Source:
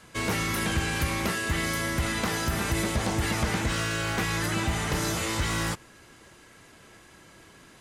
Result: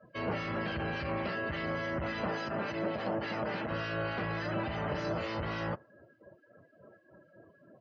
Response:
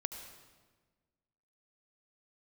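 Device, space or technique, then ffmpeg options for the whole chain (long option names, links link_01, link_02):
guitar amplifier with harmonic tremolo: -filter_complex "[0:a]acrossover=split=1600[link_01][link_02];[link_01]aeval=exprs='val(0)*(1-0.5/2+0.5/2*cos(2*PI*3.5*n/s))':channel_layout=same[link_03];[link_02]aeval=exprs='val(0)*(1-0.5/2-0.5/2*cos(2*PI*3.5*n/s))':channel_layout=same[link_04];[link_03][link_04]amix=inputs=2:normalize=0,asoftclip=type=tanh:threshold=-29.5dB,highpass=90,equalizer=frequency=590:width_type=q:width=4:gain=10,equalizer=frequency=2200:width_type=q:width=4:gain=-5,equalizer=frequency=3600:width_type=q:width=4:gain=-8,lowpass=frequency=4400:width=0.5412,lowpass=frequency=4400:width=1.3066,asettb=1/sr,asplit=3[link_05][link_06][link_07];[link_05]atrim=end=2.314[link_08];[link_06]atrim=start=2.31:end=3.71,asetpts=PTS-STARTPTS,afade=type=in:duration=0.004:curve=qsin,afade=type=out:start_time=1.396:duration=0.004:curve=qsin,highpass=150[link_09];[link_07]atrim=start=3.706[link_10];[link_08][link_09]acrossfade=duration=0.004:curve1=hsin:curve2=qsin[link_11];[link_11][link_10]acrossfade=duration=0.004:curve1=qsin:curve2=hsin,afftdn=noise_reduction=26:noise_floor=-49"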